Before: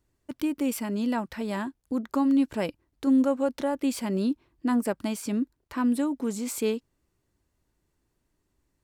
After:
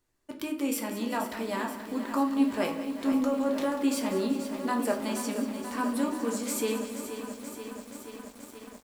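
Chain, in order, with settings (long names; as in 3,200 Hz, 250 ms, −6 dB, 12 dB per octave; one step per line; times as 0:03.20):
low-shelf EQ 260 Hz −11 dB
hum removal 80.76 Hz, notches 38
0:03.12–0:03.57: compressor whose output falls as the input rises −30 dBFS
repeating echo 191 ms, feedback 57%, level −13 dB
convolution reverb RT60 0.50 s, pre-delay 7 ms, DRR 2.5 dB
feedback echo at a low word length 480 ms, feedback 80%, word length 8 bits, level −10 dB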